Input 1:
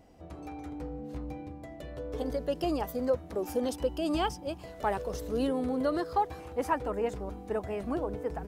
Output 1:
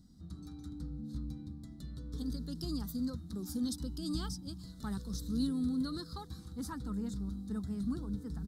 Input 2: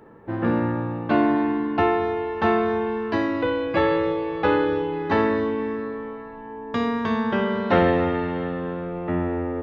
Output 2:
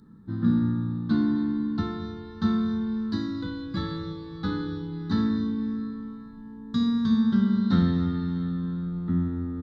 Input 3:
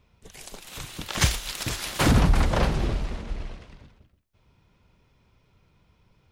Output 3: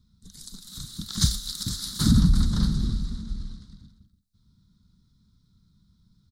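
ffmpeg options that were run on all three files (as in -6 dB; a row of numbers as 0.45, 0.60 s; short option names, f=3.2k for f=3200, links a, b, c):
-af "firequalizer=gain_entry='entry(130,0);entry(200,7);entry(340,-12);entry(580,-29);entry(1300,-9);entry(2600,-28);entry(3800,5);entry(6100,-1);entry(8700,1);entry(14000,-3)':delay=0.05:min_phase=1"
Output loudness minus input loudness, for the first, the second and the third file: -6.0, -3.5, 0.0 LU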